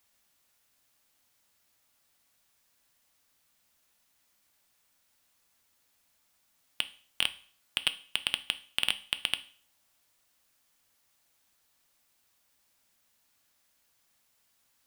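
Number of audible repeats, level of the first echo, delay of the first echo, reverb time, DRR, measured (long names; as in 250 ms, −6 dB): no echo audible, no echo audible, no echo audible, 0.45 s, 10.5 dB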